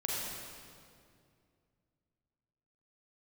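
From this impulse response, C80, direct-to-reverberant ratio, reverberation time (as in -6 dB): -1.0 dB, -5.0 dB, 2.3 s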